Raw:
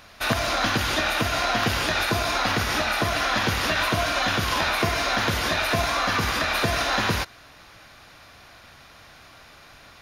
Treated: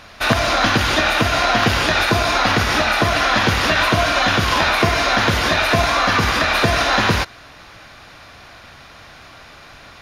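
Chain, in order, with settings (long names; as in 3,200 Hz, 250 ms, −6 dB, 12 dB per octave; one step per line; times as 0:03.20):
high-shelf EQ 9,400 Hz −10.5 dB
level +7.5 dB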